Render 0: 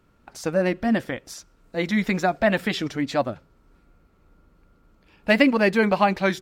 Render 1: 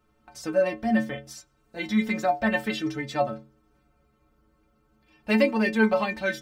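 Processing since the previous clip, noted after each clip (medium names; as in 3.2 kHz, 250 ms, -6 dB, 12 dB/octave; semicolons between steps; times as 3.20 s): inharmonic resonator 65 Hz, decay 0.51 s, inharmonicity 0.03; trim +6 dB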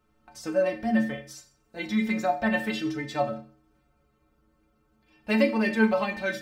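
Schroeder reverb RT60 0.42 s, combs from 28 ms, DRR 9.5 dB; trim -2 dB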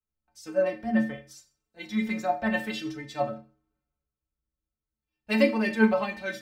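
three bands expanded up and down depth 70%; trim -2 dB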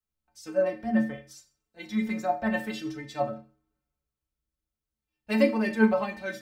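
dynamic bell 3.1 kHz, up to -5 dB, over -44 dBFS, Q 0.88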